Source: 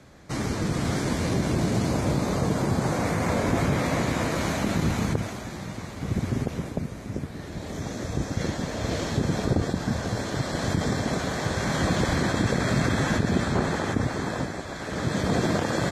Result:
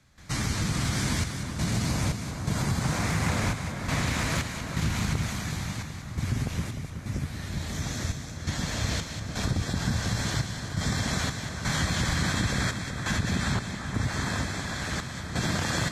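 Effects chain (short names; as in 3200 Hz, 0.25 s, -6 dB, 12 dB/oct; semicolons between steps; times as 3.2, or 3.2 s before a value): bell 440 Hz -14.5 dB 2.3 oct; compressor, threshold -29 dBFS, peak gain reduction 7 dB; step gate ".xxxxxx..xxx." 85 bpm -12 dB; split-band echo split 1800 Hz, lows 0.375 s, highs 0.193 s, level -8 dB; 2.83–5.28 Doppler distortion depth 0.25 ms; gain +6 dB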